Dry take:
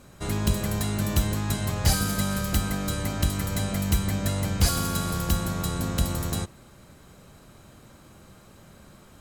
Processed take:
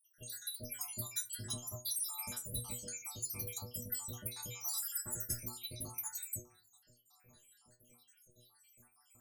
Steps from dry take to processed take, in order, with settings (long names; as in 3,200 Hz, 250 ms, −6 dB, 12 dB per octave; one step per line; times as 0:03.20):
time-frequency cells dropped at random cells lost 81%
first-order pre-emphasis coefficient 0.8
in parallel at −6.5 dB: soft clipping −36 dBFS, distortion −10 dB
on the sum: stiff-string resonator 120 Hz, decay 0.3 s, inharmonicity 0.002
feedback delay network reverb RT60 0.53 s, low-frequency decay 1.25×, high-frequency decay 0.6×, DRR 16.5 dB
level +7 dB